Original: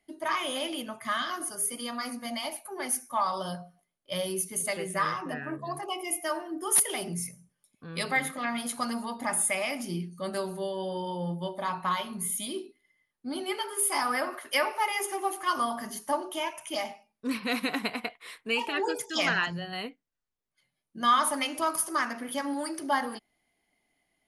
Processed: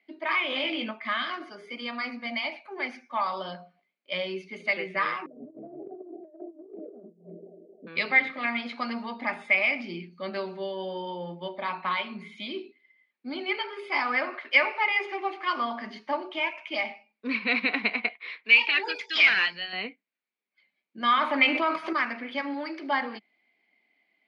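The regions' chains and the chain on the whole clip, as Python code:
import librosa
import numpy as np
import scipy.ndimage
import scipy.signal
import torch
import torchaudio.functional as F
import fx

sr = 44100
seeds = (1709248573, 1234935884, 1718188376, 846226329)

y = fx.chain(x, sr, fx.peak_eq(hz=11000.0, db=-5.5, octaves=0.38),
    fx.doubler(ms=22.0, db=-5.0),
    fx.env_flatten(amount_pct=50), at=(0.5, 0.91))
y = fx.chain(y, sr, fx.steep_lowpass(hz=630.0, slope=72),
    fx.echo_split(split_hz=300.0, low_ms=91, high_ms=263, feedback_pct=52, wet_db=-10.5),
    fx.over_compress(threshold_db=-42.0, ratio=-0.5), at=(5.26, 7.87))
y = fx.chain(y, sr, fx.tilt_shelf(db=-10.0, hz=1200.0),
    fx.clip_hard(threshold_db=-21.5), at=(18.44, 19.73))
y = fx.chain(y, sr, fx.peak_eq(hz=5300.0, db=-8.5, octaves=0.63),
    fx.env_flatten(amount_pct=70), at=(21.17, 21.93))
y = scipy.signal.sosfilt(scipy.signal.cheby1(4, 1.0, [200.0, 4500.0], 'bandpass', fs=sr, output='sos'), y)
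y = fx.peak_eq(y, sr, hz=2300.0, db=12.5, octaves=0.41)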